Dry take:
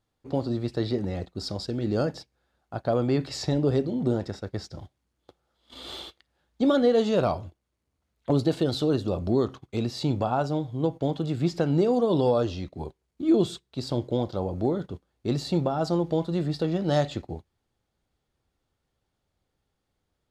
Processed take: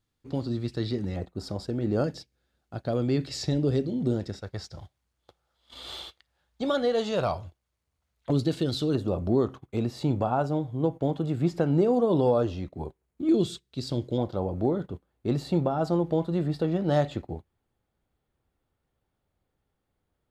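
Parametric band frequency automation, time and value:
parametric band −8.5 dB 1.5 octaves
670 Hz
from 0:01.16 4,500 Hz
from 0:02.04 910 Hz
from 0:04.41 280 Hz
from 0:08.30 770 Hz
from 0:08.95 4,700 Hz
from 0:13.29 850 Hz
from 0:14.18 5,400 Hz

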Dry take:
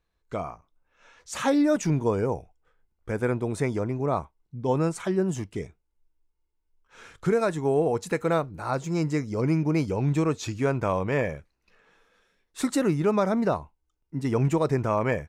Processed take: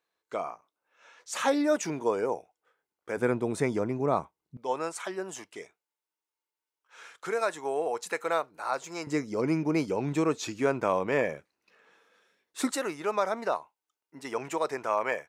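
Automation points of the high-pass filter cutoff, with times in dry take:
390 Hz
from 0:03.17 170 Hz
from 0:04.57 640 Hz
from 0:09.07 250 Hz
from 0:12.71 610 Hz

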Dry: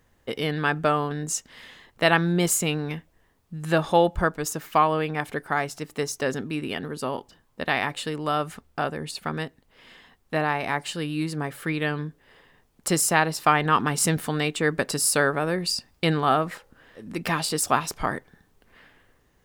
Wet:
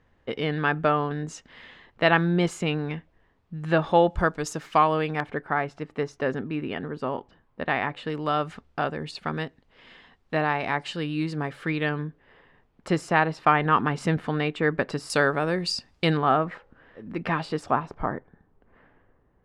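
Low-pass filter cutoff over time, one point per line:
3,100 Hz
from 0:04.10 6,000 Hz
from 0:05.20 2,200 Hz
from 0:08.10 4,300 Hz
from 0:11.89 2,500 Hz
from 0:15.10 5,900 Hz
from 0:16.17 2,200 Hz
from 0:17.71 1,200 Hz

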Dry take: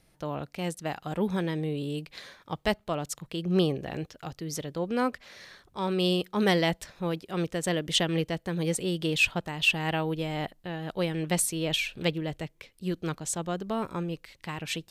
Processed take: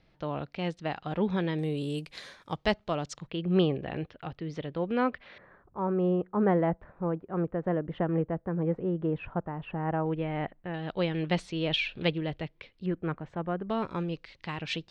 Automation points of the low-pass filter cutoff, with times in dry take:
low-pass filter 24 dB per octave
4,300 Hz
from 0:01.59 11,000 Hz
from 0:02.56 5,700 Hz
from 0:03.27 3,300 Hz
from 0:05.38 1,400 Hz
from 0:10.06 2,300 Hz
from 0:10.74 4,100 Hz
from 0:12.86 2,100 Hz
from 0:13.70 5,000 Hz

